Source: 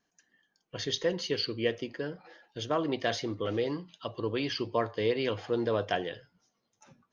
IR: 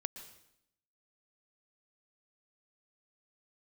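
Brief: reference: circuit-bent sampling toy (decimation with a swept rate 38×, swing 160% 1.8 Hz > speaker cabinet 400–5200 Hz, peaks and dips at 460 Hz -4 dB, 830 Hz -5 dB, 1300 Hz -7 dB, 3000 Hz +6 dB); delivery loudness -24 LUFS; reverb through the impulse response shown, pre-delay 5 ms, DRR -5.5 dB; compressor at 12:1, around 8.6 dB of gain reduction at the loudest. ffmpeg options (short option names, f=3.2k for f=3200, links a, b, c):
-filter_complex "[0:a]acompressor=threshold=-32dB:ratio=12,asplit=2[a][b];[1:a]atrim=start_sample=2205,adelay=5[c];[b][c]afir=irnorm=-1:irlink=0,volume=6.5dB[d];[a][d]amix=inputs=2:normalize=0,acrusher=samples=38:mix=1:aa=0.000001:lfo=1:lforange=60.8:lforate=1.8,highpass=400,equalizer=f=460:t=q:w=4:g=-4,equalizer=f=830:t=q:w=4:g=-5,equalizer=f=1.3k:t=q:w=4:g=-7,equalizer=f=3k:t=q:w=4:g=6,lowpass=f=5.2k:w=0.5412,lowpass=f=5.2k:w=1.3066,volume=12dB"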